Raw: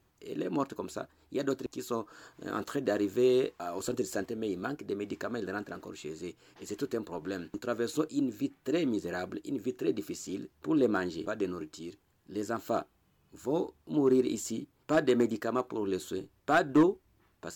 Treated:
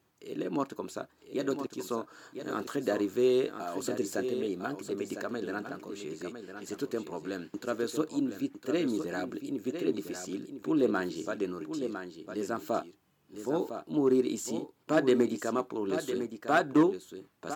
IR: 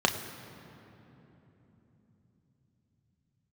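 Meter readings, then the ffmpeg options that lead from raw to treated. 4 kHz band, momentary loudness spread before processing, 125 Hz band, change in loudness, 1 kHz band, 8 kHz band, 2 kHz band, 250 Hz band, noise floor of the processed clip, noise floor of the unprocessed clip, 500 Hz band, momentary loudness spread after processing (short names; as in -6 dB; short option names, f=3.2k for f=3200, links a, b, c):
+0.5 dB, 15 LU, -1.5 dB, 0.0 dB, +0.5 dB, +0.5 dB, +0.5 dB, +0.5 dB, -67 dBFS, -70 dBFS, +0.5 dB, 14 LU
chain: -af "highpass=130,aecho=1:1:1005:0.376"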